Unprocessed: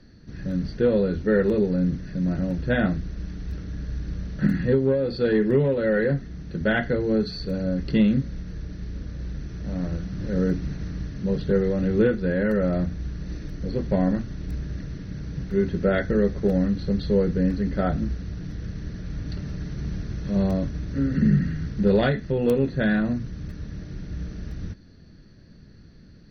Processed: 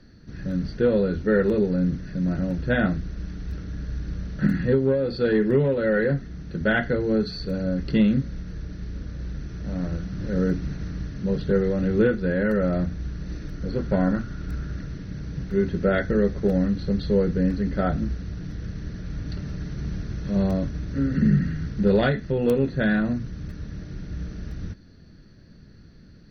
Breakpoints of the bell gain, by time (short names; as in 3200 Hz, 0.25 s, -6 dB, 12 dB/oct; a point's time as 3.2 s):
bell 1400 Hz 0.29 oct
13.34 s +3.5 dB
14 s +14 dB
14.61 s +14 dB
15.01 s +2.5 dB